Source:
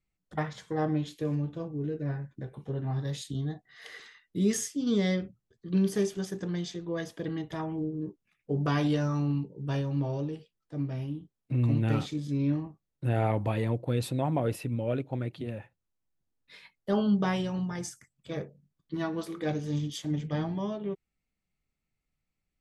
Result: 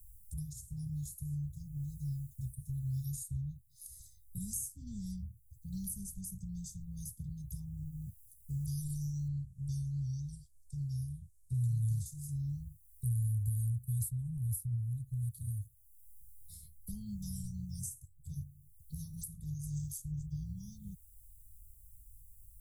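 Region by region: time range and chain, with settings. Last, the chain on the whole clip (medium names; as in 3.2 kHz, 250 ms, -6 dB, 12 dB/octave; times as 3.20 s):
9.28–12.06 s: Butterworth band-stop 1.5 kHz, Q 1.4 + distance through air 73 m
whole clip: inverse Chebyshev band-stop 320–2800 Hz, stop band 70 dB; three bands compressed up and down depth 70%; trim +16 dB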